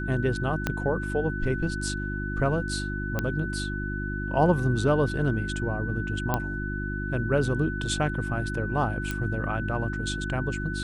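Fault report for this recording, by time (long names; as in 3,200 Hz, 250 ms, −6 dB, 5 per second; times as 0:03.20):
mains hum 50 Hz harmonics 7 −32 dBFS
whistle 1,500 Hz −34 dBFS
0:00.67: click −11 dBFS
0:03.19: click −13 dBFS
0:06.34: click −11 dBFS
0:09.11: click −15 dBFS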